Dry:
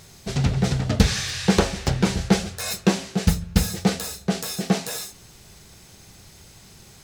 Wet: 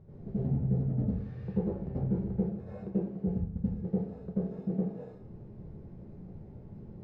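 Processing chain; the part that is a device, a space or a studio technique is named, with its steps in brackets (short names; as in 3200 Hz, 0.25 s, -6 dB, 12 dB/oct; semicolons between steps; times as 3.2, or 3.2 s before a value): television next door (compressor 4:1, threshold -35 dBFS, peak gain reduction 20.5 dB; LPF 400 Hz 12 dB/oct; reverb RT60 0.55 s, pre-delay 80 ms, DRR -9.5 dB); gain -4.5 dB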